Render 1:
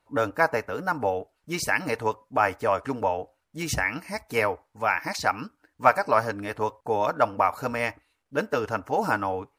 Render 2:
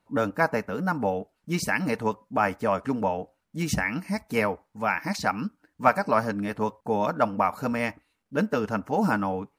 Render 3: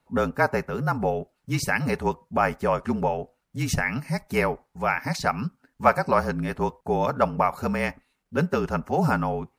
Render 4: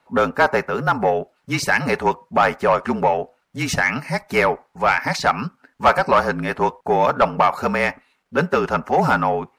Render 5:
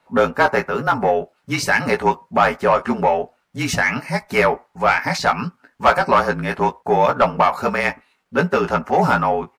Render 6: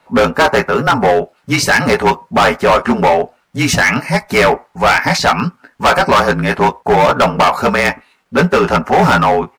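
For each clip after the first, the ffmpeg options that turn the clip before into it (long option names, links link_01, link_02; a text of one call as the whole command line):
ffmpeg -i in.wav -af "equalizer=frequency=200:width_type=o:width=0.75:gain=13.5,volume=-2dB" out.wav
ffmpeg -i in.wav -af "afreqshift=-37,volume=1.5dB" out.wav
ffmpeg -i in.wav -filter_complex "[0:a]asplit=2[link_01][link_02];[link_02]highpass=frequency=720:poles=1,volume=18dB,asoftclip=type=tanh:threshold=-3.5dB[link_03];[link_01][link_03]amix=inputs=2:normalize=0,lowpass=frequency=2800:poles=1,volume=-6dB" out.wav
ffmpeg -i in.wav -filter_complex "[0:a]asplit=2[link_01][link_02];[link_02]adelay=17,volume=-6dB[link_03];[link_01][link_03]amix=inputs=2:normalize=0" out.wav
ffmpeg -i in.wav -af "asoftclip=type=hard:threshold=-15dB,volume=8.5dB" out.wav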